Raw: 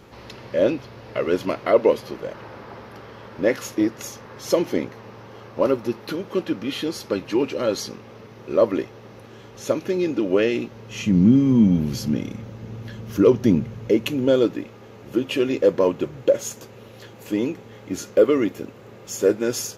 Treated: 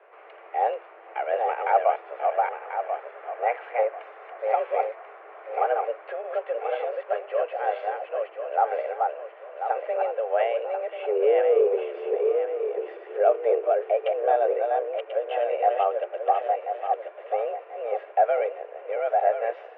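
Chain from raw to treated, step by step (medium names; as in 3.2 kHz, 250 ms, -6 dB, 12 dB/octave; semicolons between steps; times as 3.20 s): backward echo that repeats 519 ms, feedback 55%, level -3 dB; mistuned SSB +220 Hz 190–2300 Hz; trim -5 dB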